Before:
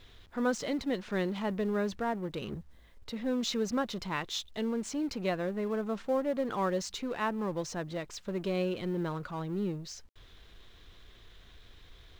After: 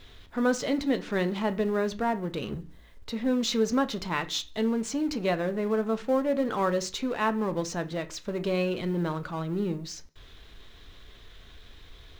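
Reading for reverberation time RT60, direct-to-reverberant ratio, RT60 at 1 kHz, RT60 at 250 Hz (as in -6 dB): 0.40 s, 9.0 dB, 0.35 s, 0.50 s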